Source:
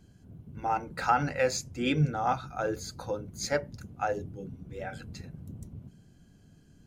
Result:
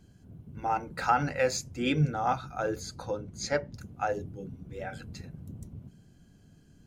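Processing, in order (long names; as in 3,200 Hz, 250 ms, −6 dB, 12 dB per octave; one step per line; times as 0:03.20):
0:02.81–0:03.72: low-pass filter 12,000 Hz → 6,000 Hz 12 dB per octave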